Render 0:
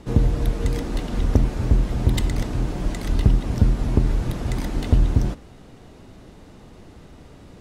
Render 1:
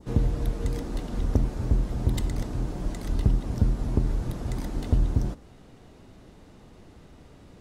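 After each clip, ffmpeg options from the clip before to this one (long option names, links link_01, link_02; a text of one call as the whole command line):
ffmpeg -i in.wav -af "adynamicequalizer=threshold=0.00355:dfrequency=2500:dqfactor=0.93:tfrequency=2500:tqfactor=0.93:attack=5:release=100:ratio=0.375:range=2.5:mode=cutabove:tftype=bell,volume=-5.5dB" out.wav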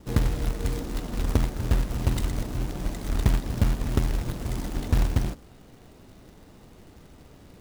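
ffmpeg -i in.wav -af "acrusher=bits=3:mode=log:mix=0:aa=0.000001" out.wav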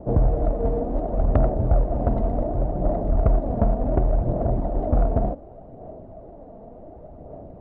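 ffmpeg -i in.wav -af "aphaser=in_gain=1:out_gain=1:delay=4.5:decay=0.36:speed=0.68:type=sinusoidal,lowpass=frequency=650:width_type=q:width=6.9,asoftclip=type=tanh:threshold=-13.5dB,volume=3.5dB" out.wav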